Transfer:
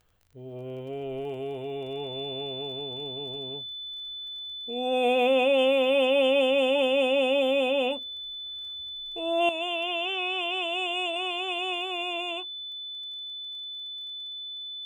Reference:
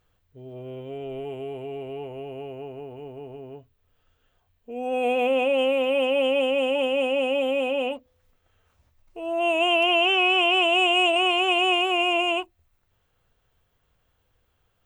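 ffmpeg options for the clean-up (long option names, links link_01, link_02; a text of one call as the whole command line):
ffmpeg -i in.wav -af "adeclick=threshold=4,bandreject=frequency=3500:width=30,asetnsamples=nb_out_samples=441:pad=0,asendcmd='9.49 volume volume 10dB',volume=0dB" out.wav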